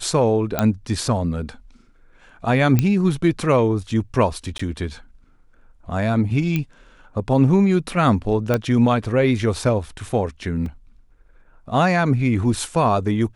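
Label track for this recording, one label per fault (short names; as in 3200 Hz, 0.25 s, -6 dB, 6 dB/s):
0.590000	0.590000	pop -5 dBFS
2.790000	2.790000	pop -5 dBFS
4.580000	4.590000	gap 14 ms
6.560000	6.560000	pop -10 dBFS
8.540000	8.540000	pop -7 dBFS
10.660000	10.660000	gap 2.5 ms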